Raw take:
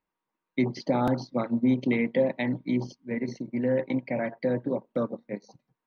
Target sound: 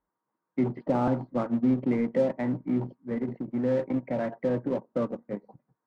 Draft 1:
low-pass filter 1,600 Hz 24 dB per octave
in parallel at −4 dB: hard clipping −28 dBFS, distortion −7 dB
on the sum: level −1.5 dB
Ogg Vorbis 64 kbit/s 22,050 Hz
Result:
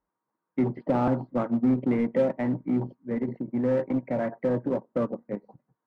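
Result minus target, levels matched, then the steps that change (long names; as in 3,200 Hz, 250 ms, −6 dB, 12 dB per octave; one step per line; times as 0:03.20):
hard clipping: distortion −4 dB
change: hard clipping −36.5 dBFS, distortion −3 dB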